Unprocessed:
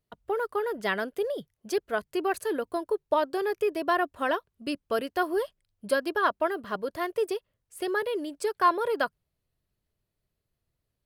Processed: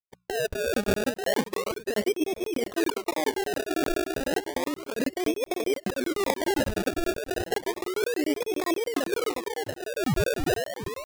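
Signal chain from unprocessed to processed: gate -41 dBFS, range -42 dB; hum notches 60/120/180 Hz; painted sound rise, 9.82–10.55 s, 360–3100 Hz -24 dBFS; graphic EQ 250/500/1000/2000 Hz +5/+9/+10/-8 dB; low-pass that closes with the level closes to 370 Hz, closed at -16.5 dBFS; on a send: tape echo 342 ms, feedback 58%, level -12 dB, low-pass 4.1 kHz; on the sum: decimation with a swept rate 29×, swing 100% 0.32 Hz; bass shelf 160 Hz +3 dB; compressor with a negative ratio -29 dBFS, ratio -1; crackling interface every 0.10 s, samples 1024, zero, from 0.74 s; trim +2.5 dB

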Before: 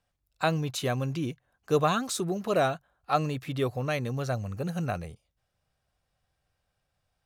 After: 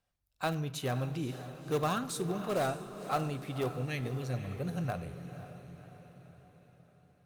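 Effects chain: time-frequency box 3.74–4.34 s, 530–1600 Hz -14 dB; in parallel at -11.5 dB: integer overflow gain 20.5 dB; on the sum: echo that smears into a reverb 528 ms, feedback 52%, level -10.5 dB; reverberation RT60 0.90 s, pre-delay 5 ms, DRR 12 dB; trim -7 dB; Opus 48 kbps 48 kHz

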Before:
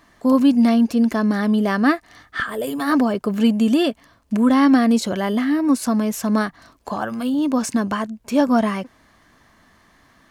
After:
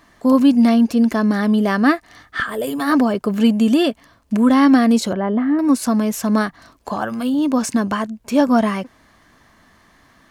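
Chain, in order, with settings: 5.13–5.59 s: low-pass 1.3 kHz 12 dB/octave; trim +2 dB

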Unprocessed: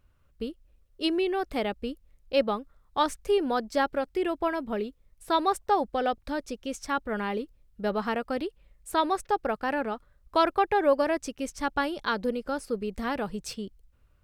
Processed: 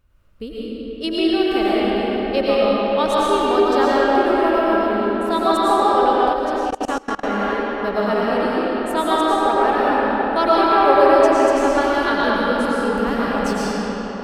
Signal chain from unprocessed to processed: wow and flutter 15 cents; algorithmic reverb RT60 5 s, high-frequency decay 0.6×, pre-delay 70 ms, DRR -8.5 dB; 6.33–7.42 s: level held to a coarse grid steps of 23 dB; trim +2 dB

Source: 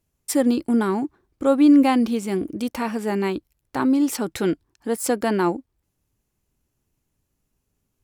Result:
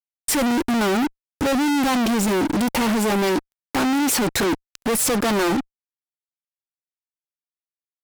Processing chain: fuzz box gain 46 dB, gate -46 dBFS; trim -5.5 dB

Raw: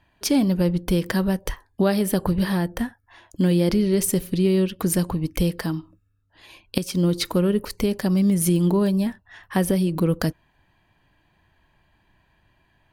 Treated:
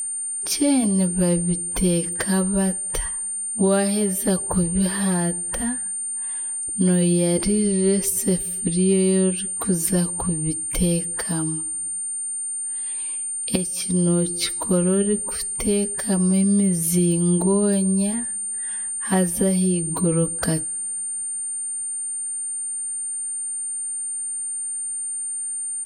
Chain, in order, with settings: two-slope reverb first 0.22 s, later 1.7 s, from -19 dB, DRR 19.5 dB; whistle 9 kHz -24 dBFS; plain phase-vocoder stretch 2×

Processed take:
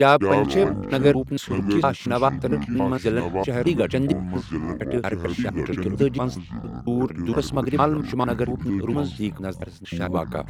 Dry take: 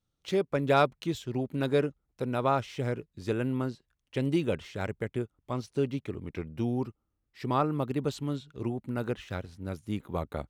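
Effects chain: slices played last to first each 229 ms, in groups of 4; high-pass 130 Hz; ever faster or slower copies 203 ms, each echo -6 st, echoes 3, each echo -6 dB; trim +8 dB

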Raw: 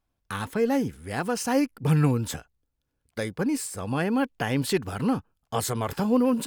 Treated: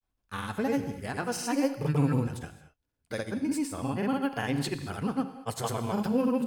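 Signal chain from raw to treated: granulator, grains 20 per s, pitch spread up and down by 0 st; gated-style reverb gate 250 ms flat, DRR 9.5 dB; trim -3 dB

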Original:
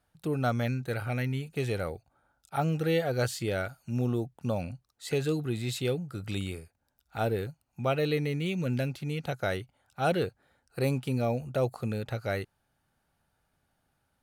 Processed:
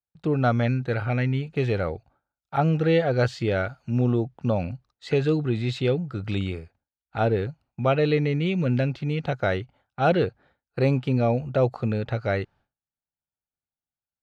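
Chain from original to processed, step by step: distance through air 180 m; expander -56 dBFS; trim +7 dB

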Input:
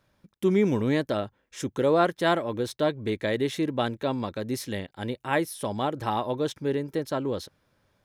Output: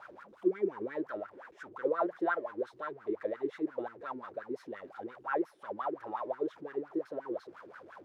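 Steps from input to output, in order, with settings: jump at every zero crossing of -31 dBFS; dynamic bell 1.8 kHz, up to +5 dB, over -42 dBFS, Q 1.8; wah-wah 5.7 Hz 330–1500 Hz, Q 9.2

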